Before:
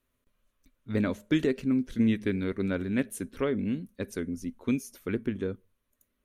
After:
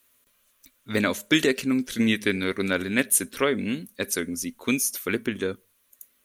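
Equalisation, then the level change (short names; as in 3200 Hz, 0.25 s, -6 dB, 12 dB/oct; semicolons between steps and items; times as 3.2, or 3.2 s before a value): tilt +3.5 dB/oct; +9.0 dB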